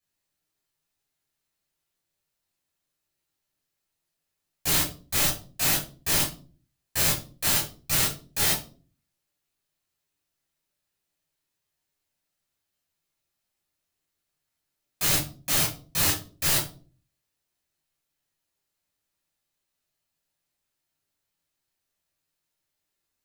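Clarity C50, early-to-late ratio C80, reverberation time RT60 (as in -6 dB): 7.5 dB, 14.5 dB, 0.40 s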